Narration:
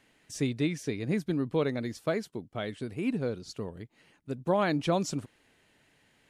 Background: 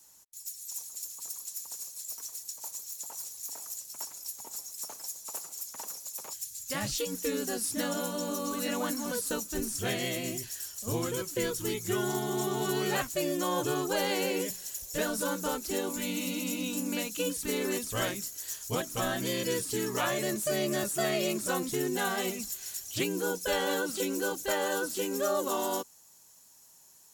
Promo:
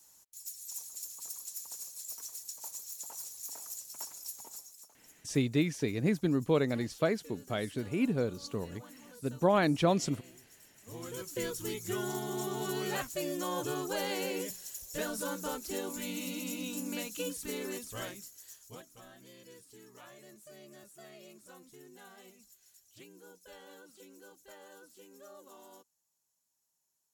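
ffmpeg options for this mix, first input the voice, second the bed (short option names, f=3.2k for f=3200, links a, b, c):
-filter_complex "[0:a]adelay=4950,volume=0.5dB[a];[1:a]volume=12.5dB,afade=t=out:st=4.34:d=0.55:silence=0.133352,afade=t=in:st=10.83:d=0.52:silence=0.16788,afade=t=out:st=17.15:d=1.87:silence=0.11885[b];[a][b]amix=inputs=2:normalize=0"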